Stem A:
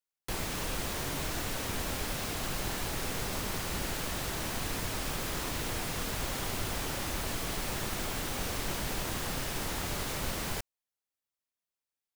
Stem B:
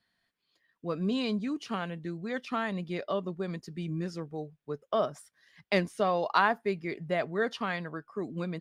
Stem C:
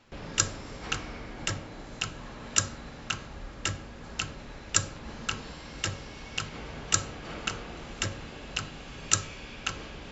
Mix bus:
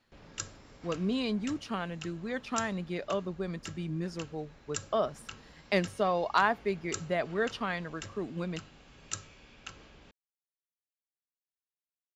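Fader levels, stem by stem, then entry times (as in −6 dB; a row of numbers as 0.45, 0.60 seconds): muted, −1.0 dB, −13.0 dB; muted, 0.00 s, 0.00 s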